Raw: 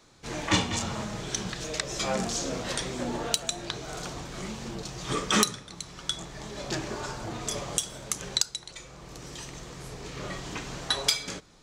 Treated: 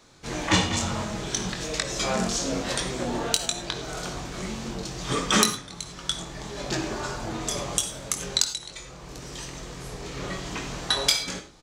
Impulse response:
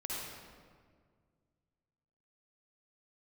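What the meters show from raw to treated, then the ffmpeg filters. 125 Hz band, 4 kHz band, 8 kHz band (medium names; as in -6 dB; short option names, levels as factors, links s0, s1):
+3.5 dB, +3.5 dB, +3.5 dB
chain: -filter_complex "[0:a]asplit=2[s0][s1];[s1]adelay=22,volume=0.398[s2];[s0][s2]amix=inputs=2:normalize=0,asplit=2[s3][s4];[1:a]atrim=start_sample=2205,afade=t=out:st=0.16:d=0.01,atrim=end_sample=7497[s5];[s4][s5]afir=irnorm=-1:irlink=0,volume=0.562[s6];[s3][s6]amix=inputs=2:normalize=0"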